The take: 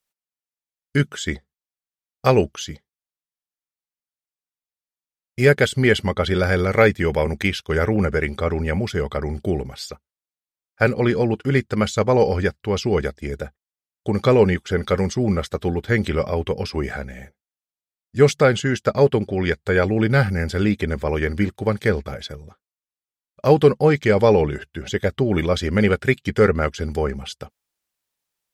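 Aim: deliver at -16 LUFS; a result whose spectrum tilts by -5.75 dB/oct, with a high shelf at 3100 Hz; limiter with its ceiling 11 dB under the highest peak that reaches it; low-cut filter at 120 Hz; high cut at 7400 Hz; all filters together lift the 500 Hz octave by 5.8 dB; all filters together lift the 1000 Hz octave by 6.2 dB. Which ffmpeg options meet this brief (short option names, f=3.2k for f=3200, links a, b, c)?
-af "highpass=120,lowpass=7.4k,equalizer=f=500:t=o:g=5.5,equalizer=f=1k:t=o:g=7.5,highshelf=f=3.1k:g=-7.5,volume=4dB,alimiter=limit=-2.5dB:level=0:latency=1"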